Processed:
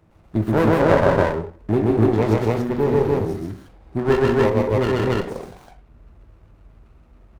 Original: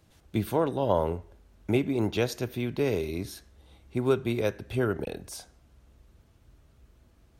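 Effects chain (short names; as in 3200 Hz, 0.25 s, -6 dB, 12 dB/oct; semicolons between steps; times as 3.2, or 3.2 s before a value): reverb removal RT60 0.68 s; resonant high shelf 1900 Hz -10 dB, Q 3; loudspeakers at several distances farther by 44 m -1 dB, 59 m -9 dB, 98 m 0 dB; on a send at -5 dB: reverb RT60 0.45 s, pre-delay 7 ms; on the sum: running maximum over 17 samples; gain +5 dB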